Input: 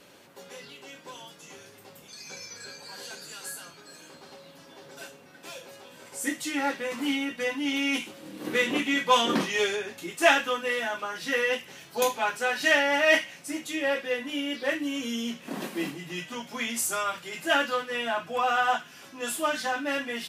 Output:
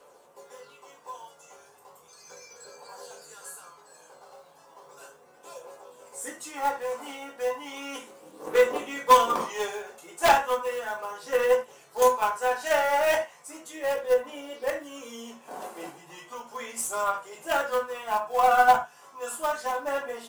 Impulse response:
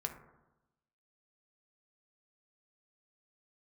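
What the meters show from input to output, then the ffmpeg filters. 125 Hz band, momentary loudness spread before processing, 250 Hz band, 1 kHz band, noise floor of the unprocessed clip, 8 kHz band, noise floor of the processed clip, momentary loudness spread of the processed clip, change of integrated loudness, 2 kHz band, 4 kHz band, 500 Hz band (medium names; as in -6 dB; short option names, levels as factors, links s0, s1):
no reading, 22 LU, -11.5 dB, +5.0 dB, -52 dBFS, -2.0 dB, -56 dBFS, 22 LU, +1.0 dB, -5.0 dB, -8.0 dB, +3.0 dB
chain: -filter_complex "[0:a]equalizer=f=125:t=o:w=1:g=-11,equalizer=f=250:t=o:w=1:g=-7,equalizer=f=500:t=o:w=1:g=9,equalizer=f=1000:t=o:w=1:g=11,equalizer=f=2000:t=o:w=1:g=-4,equalizer=f=4000:t=o:w=1:g=-4,equalizer=f=8000:t=o:w=1:g=8,acrossover=split=120[s0][s1];[s1]acrusher=bits=5:mode=log:mix=0:aa=0.000001[s2];[s0][s2]amix=inputs=2:normalize=0,aphaser=in_gain=1:out_gain=1:delay=1.5:decay=0.31:speed=0.35:type=triangular,aeval=exprs='1.06*(cos(1*acos(clip(val(0)/1.06,-1,1)))-cos(1*PI/2))+0.422*(cos(5*acos(clip(val(0)/1.06,-1,1)))-cos(5*PI/2))+0.0266*(cos(6*acos(clip(val(0)/1.06,-1,1)))-cos(6*PI/2))+0.299*(cos(7*acos(clip(val(0)/1.06,-1,1)))-cos(7*PI/2))':c=same[s3];[1:a]atrim=start_sample=2205,afade=t=out:st=0.14:d=0.01,atrim=end_sample=6615[s4];[s3][s4]afir=irnorm=-1:irlink=0,volume=0.376"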